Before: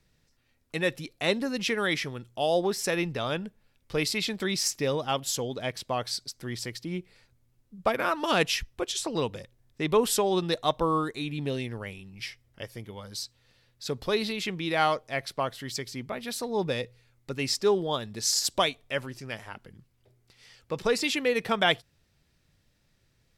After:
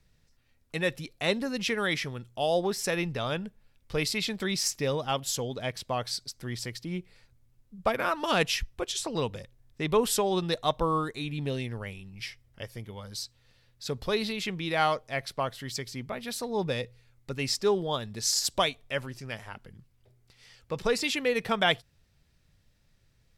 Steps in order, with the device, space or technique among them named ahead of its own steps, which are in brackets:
low shelf boost with a cut just above (low-shelf EQ 90 Hz +7 dB; parametric band 320 Hz −3 dB 0.56 octaves)
level −1 dB

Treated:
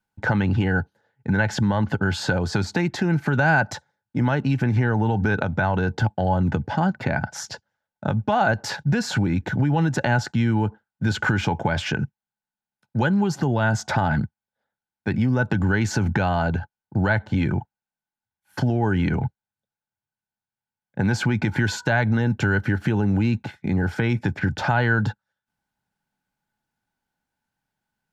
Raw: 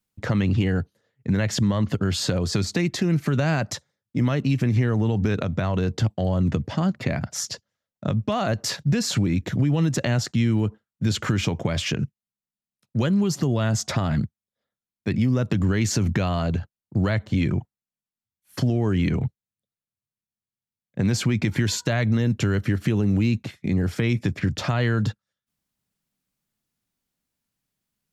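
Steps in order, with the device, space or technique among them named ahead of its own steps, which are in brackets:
inside a helmet (high-shelf EQ 5,200 Hz −9 dB; hollow resonant body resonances 850/1,500 Hz, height 17 dB, ringing for 35 ms)

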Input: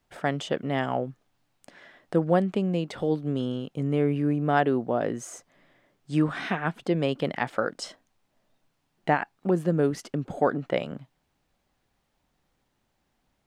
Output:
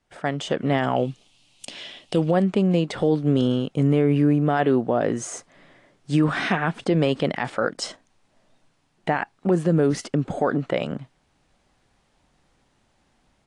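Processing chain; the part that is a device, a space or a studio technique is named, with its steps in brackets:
0:00.96–0:02.31: high shelf with overshoot 2,200 Hz +9.5 dB, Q 3
low-bitrate web radio (automatic gain control gain up to 9 dB; brickwall limiter −10 dBFS, peak gain reduction 8 dB; AAC 48 kbit/s 22,050 Hz)

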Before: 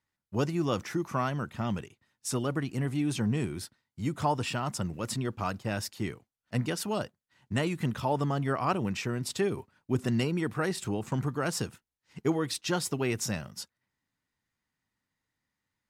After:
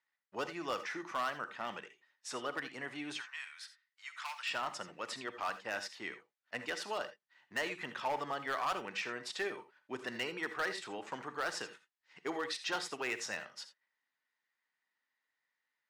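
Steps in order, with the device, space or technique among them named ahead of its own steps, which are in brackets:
megaphone (band-pass filter 580–3,800 Hz; parametric band 1,800 Hz +5 dB 0.48 octaves; hard clipping −26.5 dBFS, distortion −13 dB)
0:03.17–0:04.48: inverse Chebyshev high-pass filter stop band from 200 Hz, stop band 80 dB
high-shelf EQ 4,000 Hz +6 dB
reverb whose tail is shaped and stops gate 100 ms rising, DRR 10.5 dB
level −3 dB

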